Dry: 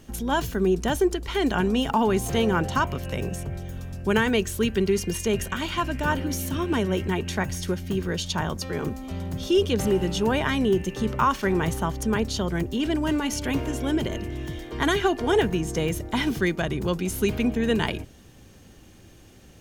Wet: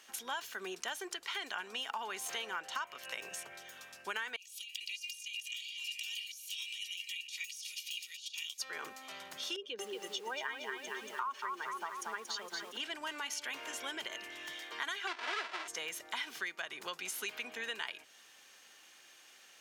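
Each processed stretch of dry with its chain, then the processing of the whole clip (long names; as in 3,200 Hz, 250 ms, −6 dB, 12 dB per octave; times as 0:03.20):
0:04.36–0:08.60: elliptic high-pass filter 2,500 Hz + compressor whose output falls as the input rises −44 dBFS + comb filter 2.1 ms, depth 53%
0:09.56–0:12.77: expanding power law on the bin magnitudes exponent 1.6 + high-pass filter 240 Hz + feedback echo at a low word length 231 ms, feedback 55%, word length 8 bits, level −5 dB
0:15.07–0:15.68: each half-wave held at its own peak + band-pass filter 310–3,800 Hz + comb filter 3 ms, depth 49%
whole clip: high-pass filter 1,300 Hz 12 dB per octave; high-shelf EQ 8,400 Hz −8 dB; downward compressor 4 to 1, threshold −39 dBFS; level +1.5 dB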